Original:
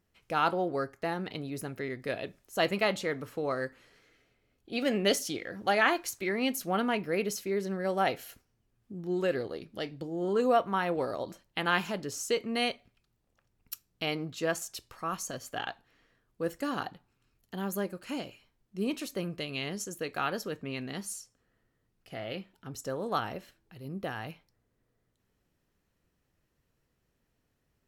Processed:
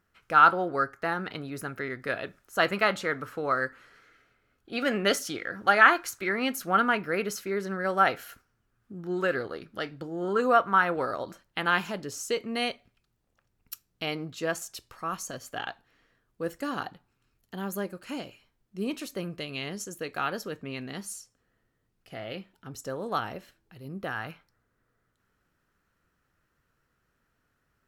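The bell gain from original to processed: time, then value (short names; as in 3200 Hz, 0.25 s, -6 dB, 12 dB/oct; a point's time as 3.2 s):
bell 1400 Hz 0.72 oct
11 s +13.5 dB
11.9 s +2.5 dB
23.89 s +2.5 dB
24.3 s +13.5 dB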